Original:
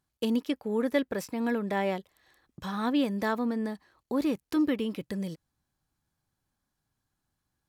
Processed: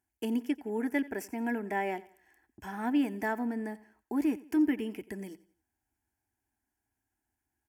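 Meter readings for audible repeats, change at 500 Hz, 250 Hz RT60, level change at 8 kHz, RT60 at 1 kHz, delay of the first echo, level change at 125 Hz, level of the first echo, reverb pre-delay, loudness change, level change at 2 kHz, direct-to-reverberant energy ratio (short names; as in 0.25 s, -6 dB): 2, -5.5 dB, none, n/a, none, 88 ms, n/a, -19.5 dB, none, -2.5 dB, -0.5 dB, none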